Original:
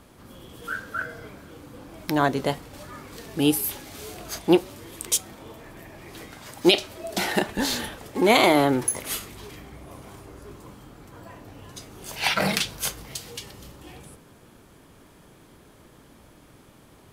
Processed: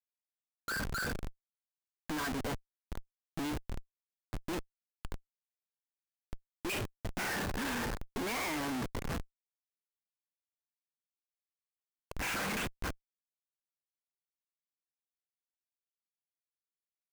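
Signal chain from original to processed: speaker cabinet 230–2800 Hz, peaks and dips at 240 Hz +4 dB, 360 Hz -7 dB, 630 Hz -7 dB, 1100 Hz +5 dB, 1600 Hz +8 dB, 2500 Hz +6 dB; low-pass opened by the level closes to 1000 Hz, open at -17.5 dBFS; Schmitt trigger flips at -32.5 dBFS; gain -5.5 dB

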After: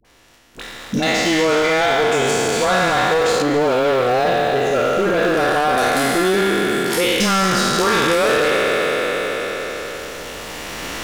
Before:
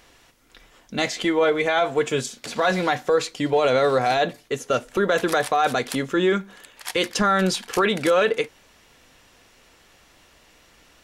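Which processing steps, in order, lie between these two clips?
spectral trails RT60 2.95 s; recorder AGC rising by 7 dB/s; 3.37–5.73 LPF 1700 Hz 6 dB/oct; sample leveller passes 3; dispersion highs, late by 49 ms, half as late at 610 Hz; three-band squash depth 40%; gain -8.5 dB

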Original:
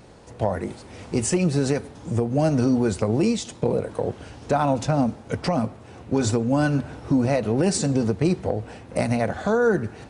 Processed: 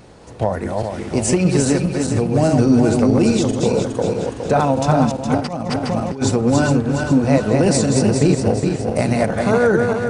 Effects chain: regenerating reverse delay 0.207 s, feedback 67%, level -3.5 dB; 5.38–6.22 negative-ratio compressor -25 dBFS, ratio -0.5; gain +4 dB

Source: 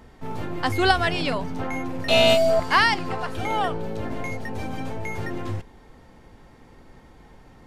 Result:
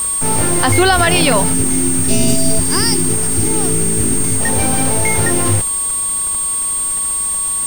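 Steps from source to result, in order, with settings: whine 8600 Hz -29 dBFS; spectral gain 1.54–4.41, 450–4600 Hz -20 dB; requantised 6-bit, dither none; maximiser +14.5 dB; gain -1 dB

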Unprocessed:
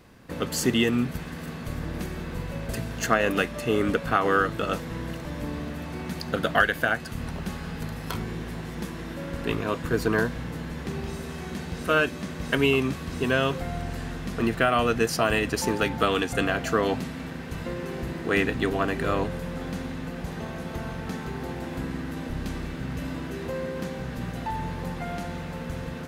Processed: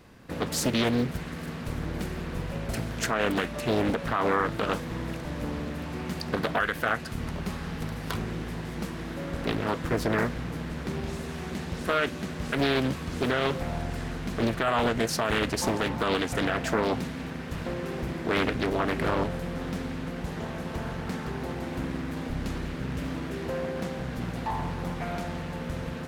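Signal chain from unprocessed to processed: limiter -14.5 dBFS, peak gain reduction 8 dB; Doppler distortion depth 0.85 ms

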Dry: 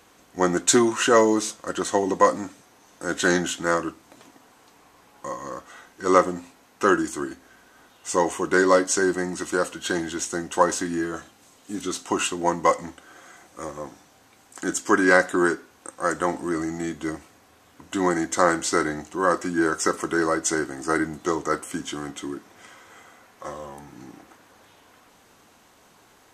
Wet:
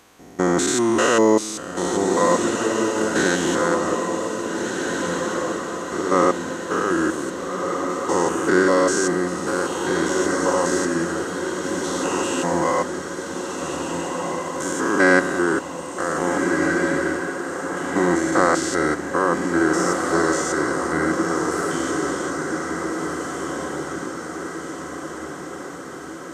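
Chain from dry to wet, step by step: stepped spectrum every 0.2 s; diffused feedback echo 1.664 s, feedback 58%, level -4 dB; gain +4.5 dB

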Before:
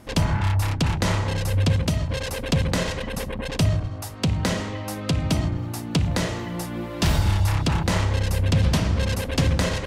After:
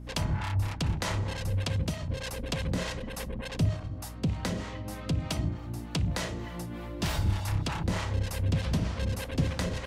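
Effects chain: harmonic tremolo 3.3 Hz, depth 70%, crossover 520 Hz; hum 60 Hz, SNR 12 dB; gain -5 dB

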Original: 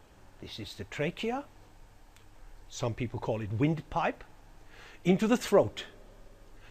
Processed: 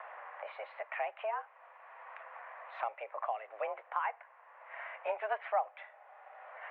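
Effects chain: mistuned SSB +210 Hz 410–2100 Hz; three-band squash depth 70%; gain -1.5 dB

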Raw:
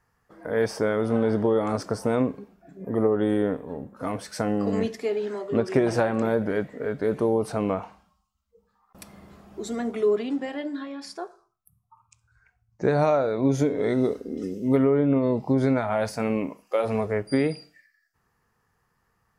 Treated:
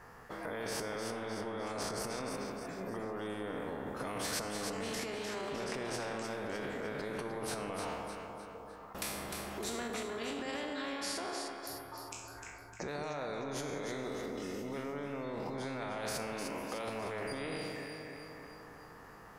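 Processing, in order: spectral trails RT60 0.54 s; EQ curve 110 Hz 0 dB, 500 Hz +8 dB, 7400 Hz -2 dB; limiter -26 dBFS, peak gain reduction 23 dB; echo with dull and thin repeats by turns 0.152 s, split 1100 Hz, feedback 65%, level -5.5 dB; spectral compressor 2:1; gain +1.5 dB

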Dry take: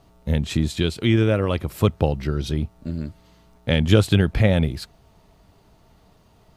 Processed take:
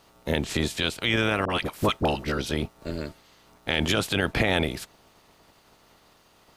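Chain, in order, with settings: spectral limiter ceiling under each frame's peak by 20 dB; 1.45–2.38 dispersion highs, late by 49 ms, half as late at 770 Hz; limiter -8 dBFS, peak gain reduction 9 dB; gain -3.5 dB

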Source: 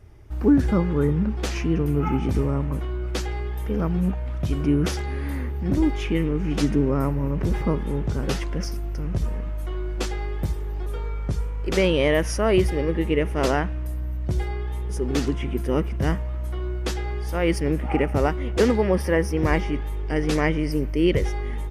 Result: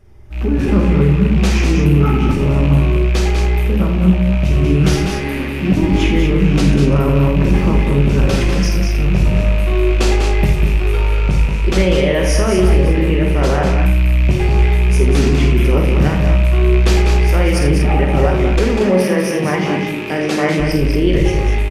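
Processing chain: rattling part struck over -26 dBFS, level -27 dBFS; limiter -17.5 dBFS, peak gain reduction 10 dB; 18.52–20.6 HPF 150 Hz 24 dB/oct; tapped delay 49/82/196/233 ms -6.5/-10/-6.5/-8.5 dB; reverb RT60 0.45 s, pre-delay 5 ms, DRR 5 dB; AGC gain up to 11.5 dB; Doppler distortion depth 0.17 ms

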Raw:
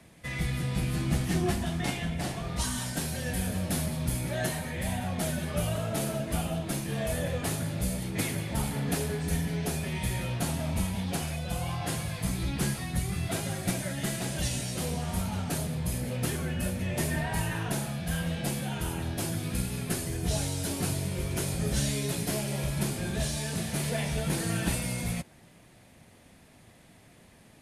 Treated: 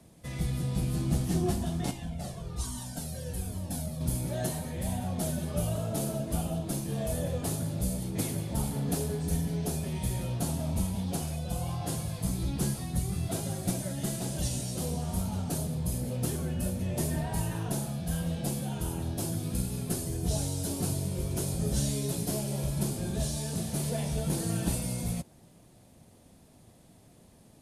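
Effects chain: bell 2000 Hz -12 dB 1.5 oct; 1.91–4.01 cascading flanger falling 1.2 Hz

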